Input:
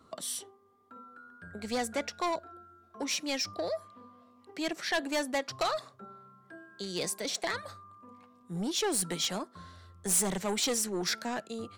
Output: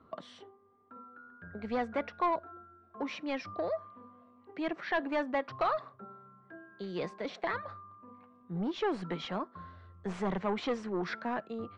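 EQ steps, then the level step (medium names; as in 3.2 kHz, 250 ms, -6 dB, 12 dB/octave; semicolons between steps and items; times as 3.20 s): low-pass 2.3 kHz 12 dB/octave; dynamic bell 1.1 kHz, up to +5 dB, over -54 dBFS, Q 3.1; distance through air 110 m; 0.0 dB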